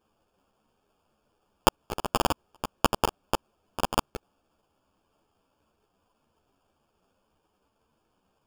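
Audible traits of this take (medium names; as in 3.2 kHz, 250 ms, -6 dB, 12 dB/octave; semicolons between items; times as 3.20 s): aliases and images of a low sample rate 2 kHz, jitter 0%; a shimmering, thickened sound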